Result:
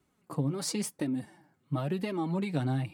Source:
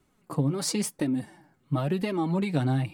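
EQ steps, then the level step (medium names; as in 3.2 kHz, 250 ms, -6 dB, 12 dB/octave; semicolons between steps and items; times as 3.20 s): high-pass 50 Hz; -4.5 dB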